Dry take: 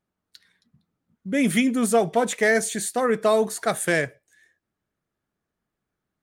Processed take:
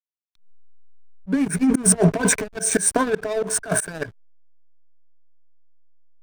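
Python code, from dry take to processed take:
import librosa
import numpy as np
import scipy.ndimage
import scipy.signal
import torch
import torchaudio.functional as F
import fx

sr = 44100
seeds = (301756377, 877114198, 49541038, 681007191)

y = fx.peak_eq(x, sr, hz=1600.0, db=8.5, octaves=0.56)
y = fx.over_compress(y, sr, threshold_db=-24.0, ratio=-0.5)
y = fx.env_phaser(y, sr, low_hz=160.0, high_hz=3300.0, full_db=-25.0)
y = fx.ripple_eq(y, sr, per_octave=1.6, db=14)
y = fx.backlash(y, sr, play_db=-26.0)
y = fx.auto_swell(y, sr, attack_ms=160.0)
y = y * 10.0 ** (7.5 / 20.0)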